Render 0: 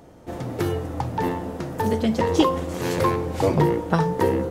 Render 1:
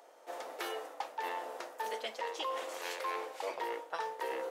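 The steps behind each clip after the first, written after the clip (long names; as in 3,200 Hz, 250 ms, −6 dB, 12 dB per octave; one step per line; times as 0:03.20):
high-pass filter 530 Hz 24 dB per octave
dynamic equaliser 2,700 Hz, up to +6 dB, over −41 dBFS, Q 0.85
reversed playback
downward compressor 6 to 1, threshold −30 dBFS, peak gain reduction 13 dB
reversed playback
level −5 dB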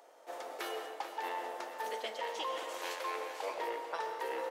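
single-tap delay 440 ms −11 dB
on a send at −6.5 dB: convolution reverb RT60 1.2 s, pre-delay 85 ms
on the sum: level −1 dB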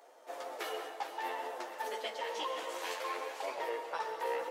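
multi-voice chorus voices 2, 0.58 Hz, delay 12 ms, depth 4.9 ms
level +3.5 dB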